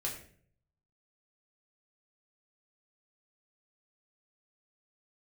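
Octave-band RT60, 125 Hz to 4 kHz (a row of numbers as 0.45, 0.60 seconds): 1.0, 0.70, 0.60, 0.45, 0.50, 0.40 seconds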